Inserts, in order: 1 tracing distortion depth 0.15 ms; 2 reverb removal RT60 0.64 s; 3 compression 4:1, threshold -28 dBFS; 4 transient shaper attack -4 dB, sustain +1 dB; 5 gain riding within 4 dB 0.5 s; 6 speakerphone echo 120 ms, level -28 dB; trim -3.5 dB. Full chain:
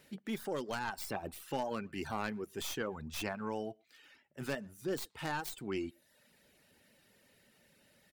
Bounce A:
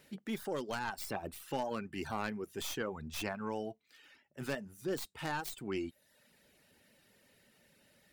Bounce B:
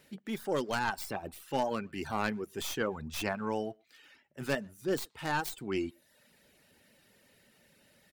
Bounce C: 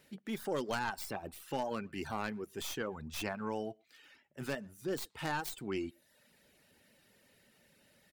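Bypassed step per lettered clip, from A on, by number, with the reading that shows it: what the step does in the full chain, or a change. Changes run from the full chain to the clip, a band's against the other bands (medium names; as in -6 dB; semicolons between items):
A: 6, echo-to-direct -31.5 dB to none; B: 3, mean gain reduction 2.0 dB; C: 5, momentary loudness spread change +3 LU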